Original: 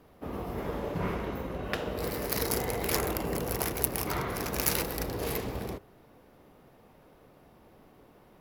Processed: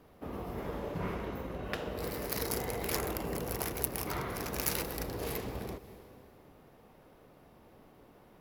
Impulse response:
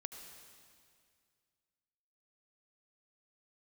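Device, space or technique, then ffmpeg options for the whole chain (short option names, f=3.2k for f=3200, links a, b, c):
ducked reverb: -filter_complex "[0:a]asplit=3[a][b][c];[1:a]atrim=start_sample=2205[d];[b][d]afir=irnorm=-1:irlink=0[e];[c]apad=whole_len=370654[f];[e][f]sidechaincompress=threshold=-42dB:ratio=8:attack=22:release=216,volume=0dB[g];[a][g]amix=inputs=2:normalize=0,volume=-5.5dB"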